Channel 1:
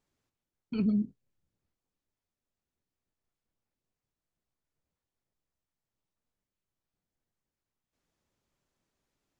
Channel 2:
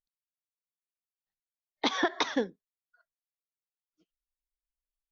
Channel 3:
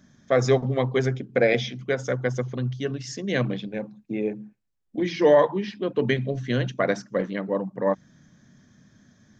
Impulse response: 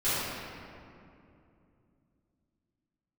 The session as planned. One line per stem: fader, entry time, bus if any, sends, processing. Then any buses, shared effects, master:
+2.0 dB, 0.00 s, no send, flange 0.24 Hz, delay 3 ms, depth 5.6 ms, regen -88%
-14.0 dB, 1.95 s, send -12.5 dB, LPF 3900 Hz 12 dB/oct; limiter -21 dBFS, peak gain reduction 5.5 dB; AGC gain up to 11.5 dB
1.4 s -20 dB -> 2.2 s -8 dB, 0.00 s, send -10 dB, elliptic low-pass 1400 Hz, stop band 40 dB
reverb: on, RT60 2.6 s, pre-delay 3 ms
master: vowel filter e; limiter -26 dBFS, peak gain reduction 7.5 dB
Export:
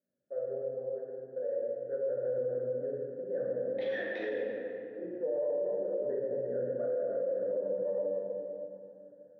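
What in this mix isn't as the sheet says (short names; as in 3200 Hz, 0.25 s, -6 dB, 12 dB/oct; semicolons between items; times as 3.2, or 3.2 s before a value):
stem 1: muted; reverb return +8.5 dB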